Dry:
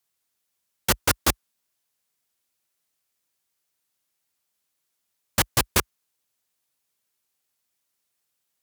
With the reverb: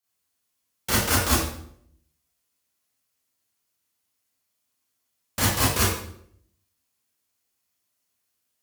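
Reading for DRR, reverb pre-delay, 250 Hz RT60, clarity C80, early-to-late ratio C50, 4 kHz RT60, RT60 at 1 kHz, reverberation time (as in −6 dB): −9.0 dB, 29 ms, 0.80 s, 4.5 dB, −0.5 dB, 0.55 s, 0.60 s, 0.65 s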